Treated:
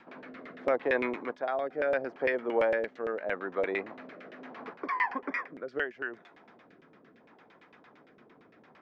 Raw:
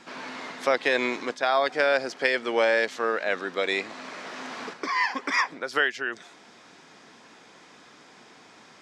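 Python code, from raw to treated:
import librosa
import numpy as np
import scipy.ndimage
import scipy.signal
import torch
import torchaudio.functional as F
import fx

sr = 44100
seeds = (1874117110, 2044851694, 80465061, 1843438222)

y = fx.rotary(x, sr, hz=0.75)
y = fx.filter_lfo_lowpass(y, sr, shape='saw_down', hz=8.8, low_hz=460.0, high_hz=2800.0, q=1.2)
y = fx.dynamic_eq(y, sr, hz=4000.0, q=1.2, threshold_db=-48.0, ratio=4.0, max_db=-4)
y = y * librosa.db_to_amplitude(-3.0)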